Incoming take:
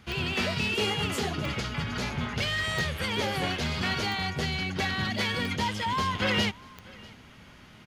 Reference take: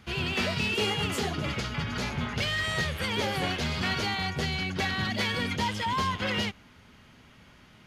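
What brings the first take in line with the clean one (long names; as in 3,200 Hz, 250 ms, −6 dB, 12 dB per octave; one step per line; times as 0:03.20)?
click removal
echo removal 643 ms −23.5 dB
level correction −3.5 dB, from 0:06.15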